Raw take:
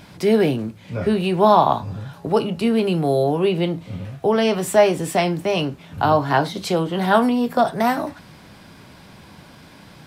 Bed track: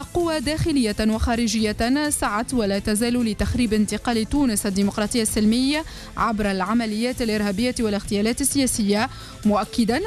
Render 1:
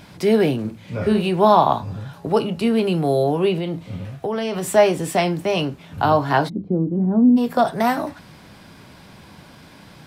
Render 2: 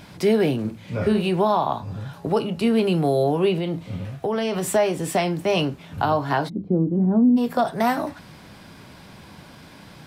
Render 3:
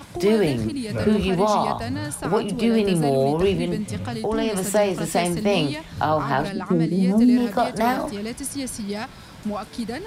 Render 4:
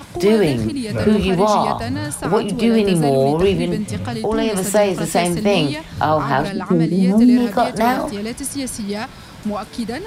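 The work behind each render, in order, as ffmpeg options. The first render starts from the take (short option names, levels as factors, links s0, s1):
-filter_complex "[0:a]asettb=1/sr,asplit=3[s0][s1][s2];[s0]atrim=end=0.604[s3];[s1]atrim=start=0.6:end=1.29,asetpts=PTS-STARTPTS,afade=t=in:d=0.004:c=qsin,afade=t=out:st=0.686:d=0.004:c=qsin,asplit=2[s4][s5];[s5]adelay=47,volume=0.447[s6];[s4][s6]amix=inputs=2:normalize=0,atrim=end_sample=30429[s7];[s2]atrim=start=1.286[s8];[s3][s7]acrossfade=d=0.004:c1=hsin:c2=qsin[s9];[s9][s8]acrossfade=d=0.004:c1=qsin:c2=hsin,asettb=1/sr,asplit=3[s10][s11][s12];[s10]atrim=end=3.554[s13];[s11]atrim=start=3.55:end=4.74,asetpts=PTS-STARTPTS,afade=t=in:d=0.004:c=qsin,afade=t=out:st=1.186:d=0.004:c=qsin,acompressor=threshold=0.1:ratio=6:attack=3.2:release=140:knee=1:detection=peak[s14];[s12]atrim=start=4.736[s15];[s13][s14]acrossfade=d=0.004:c1=hsin:c2=qsin[s16];[s16][s15]acrossfade=d=0.004:c1=qsin:c2=hsin,asplit=3[s17][s18][s19];[s17]afade=t=out:st=6.48:d=0.02[s20];[s18]lowpass=f=270:t=q:w=2.1,afade=t=in:st=6.48:d=0.02,afade=t=out:st=7.36:d=0.02[s21];[s19]afade=t=in:st=7.36:d=0.02[s22];[s20][s21][s22]amix=inputs=3:normalize=0"
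-af "alimiter=limit=0.299:level=0:latency=1:release=338"
-filter_complex "[1:a]volume=0.355[s0];[0:a][s0]amix=inputs=2:normalize=0"
-af "volume=1.68"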